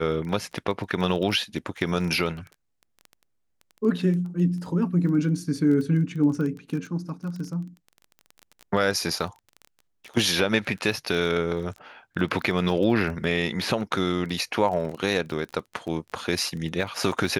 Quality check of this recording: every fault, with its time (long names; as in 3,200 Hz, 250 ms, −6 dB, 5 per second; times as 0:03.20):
surface crackle 16 per second −31 dBFS